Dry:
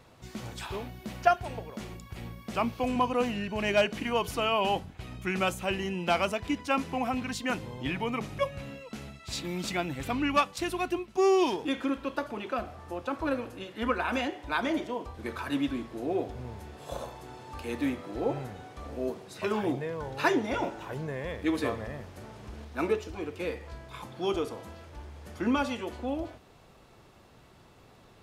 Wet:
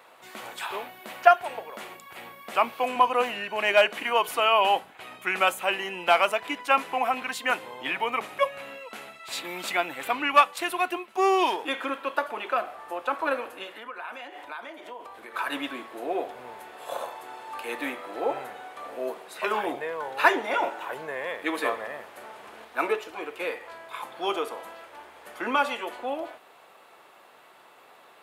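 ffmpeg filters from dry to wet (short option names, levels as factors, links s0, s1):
-filter_complex "[0:a]asplit=3[s0][s1][s2];[s0]afade=t=out:st=13.74:d=0.02[s3];[s1]acompressor=threshold=0.01:ratio=10:attack=3.2:release=140:knee=1:detection=peak,afade=t=in:st=13.74:d=0.02,afade=t=out:st=15.34:d=0.02[s4];[s2]afade=t=in:st=15.34:d=0.02[s5];[s3][s4][s5]amix=inputs=3:normalize=0,highpass=680,equalizer=f=5600:w=1.2:g=-11.5,volume=2.82"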